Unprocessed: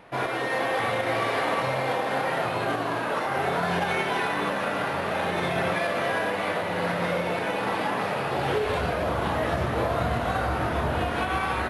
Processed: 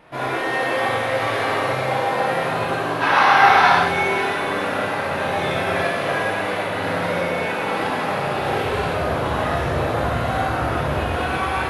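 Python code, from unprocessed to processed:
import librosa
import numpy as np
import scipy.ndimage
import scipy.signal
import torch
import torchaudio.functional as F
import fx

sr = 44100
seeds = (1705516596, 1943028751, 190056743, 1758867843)

y = fx.spec_box(x, sr, start_s=3.01, length_s=0.69, low_hz=710.0, high_hz=6300.0, gain_db=11)
y = fx.rev_gated(y, sr, seeds[0], gate_ms=210, shape='flat', drr_db=-5.0)
y = y * 10.0 ** (-1.5 / 20.0)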